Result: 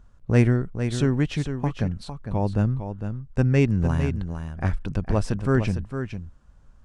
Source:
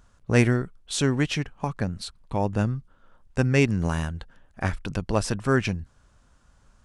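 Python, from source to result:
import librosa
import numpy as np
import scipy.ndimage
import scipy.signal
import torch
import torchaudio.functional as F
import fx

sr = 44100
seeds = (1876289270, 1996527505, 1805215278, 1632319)

y = fx.tilt_eq(x, sr, slope=-2.0)
y = y + 10.0 ** (-8.5 / 20.0) * np.pad(y, (int(455 * sr / 1000.0), 0))[:len(y)]
y = y * 10.0 ** (-3.0 / 20.0)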